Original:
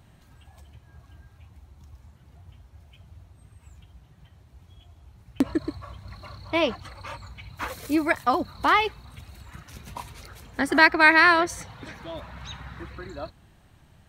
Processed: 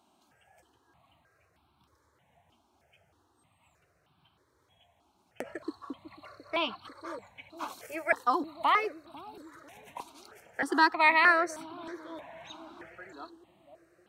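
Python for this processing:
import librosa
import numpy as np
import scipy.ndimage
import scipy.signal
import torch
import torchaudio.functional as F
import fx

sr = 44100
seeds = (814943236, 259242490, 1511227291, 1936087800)

y = scipy.signal.sosfilt(scipy.signal.butter(2, 320.0, 'highpass', fs=sr, output='sos'), x)
y = fx.high_shelf(y, sr, hz=10000.0, db=-10.0)
y = fx.echo_bbd(y, sr, ms=496, stages=2048, feedback_pct=52, wet_db=-10.5)
y = fx.phaser_held(y, sr, hz=3.2, low_hz=500.0, high_hz=1900.0)
y = F.gain(torch.from_numpy(y), -2.0).numpy()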